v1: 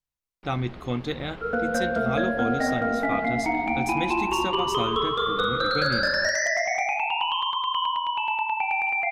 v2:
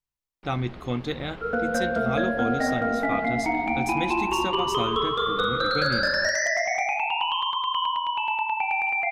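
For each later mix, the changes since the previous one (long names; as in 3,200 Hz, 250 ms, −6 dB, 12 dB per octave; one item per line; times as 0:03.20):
nothing changed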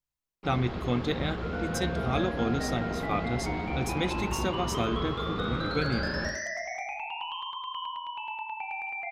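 first sound: send +10.0 dB
second sound −10.5 dB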